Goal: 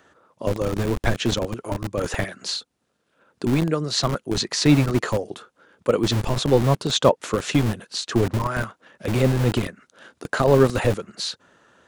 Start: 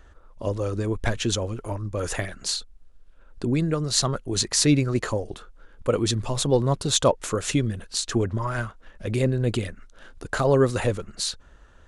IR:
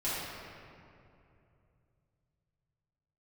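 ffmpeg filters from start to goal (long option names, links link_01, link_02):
-filter_complex "[0:a]acrossover=split=5500[link_01][link_02];[link_02]acompressor=threshold=-44dB:ratio=4:attack=1:release=60[link_03];[link_01][link_03]amix=inputs=2:normalize=0,acrossover=split=130[link_04][link_05];[link_04]acrusher=bits=4:mix=0:aa=0.000001[link_06];[link_06][link_05]amix=inputs=2:normalize=0,volume=3dB"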